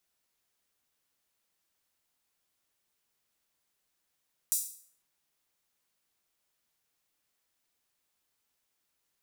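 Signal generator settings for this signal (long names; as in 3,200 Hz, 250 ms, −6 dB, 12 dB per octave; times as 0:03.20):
open synth hi-hat length 0.50 s, high-pass 7,600 Hz, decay 0.52 s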